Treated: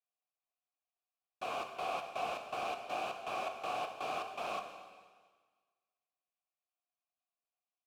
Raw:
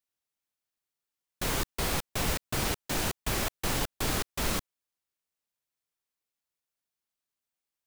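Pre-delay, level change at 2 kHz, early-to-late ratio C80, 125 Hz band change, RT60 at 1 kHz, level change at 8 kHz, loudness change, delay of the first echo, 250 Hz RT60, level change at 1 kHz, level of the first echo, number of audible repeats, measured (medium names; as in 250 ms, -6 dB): 6 ms, -8.5 dB, 8.5 dB, -26.5 dB, 1.6 s, -22.5 dB, -8.5 dB, 234 ms, 1.5 s, 0.0 dB, -20.0 dB, 2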